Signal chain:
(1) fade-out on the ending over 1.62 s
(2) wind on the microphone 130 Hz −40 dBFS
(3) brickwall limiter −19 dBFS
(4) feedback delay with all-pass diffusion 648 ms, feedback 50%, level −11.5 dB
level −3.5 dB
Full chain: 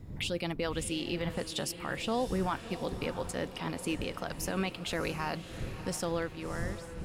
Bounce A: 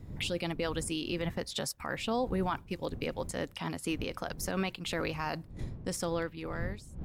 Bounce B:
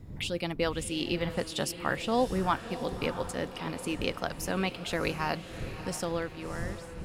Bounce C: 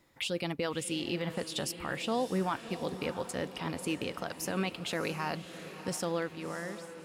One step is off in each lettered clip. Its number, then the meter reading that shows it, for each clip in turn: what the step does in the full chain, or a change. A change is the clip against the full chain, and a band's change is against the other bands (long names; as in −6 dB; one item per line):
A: 4, echo-to-direct ratio −10.5 dB to none audible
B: 3, change in crest factor +5.0 dB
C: 2, 125 Hz band −2.0 dB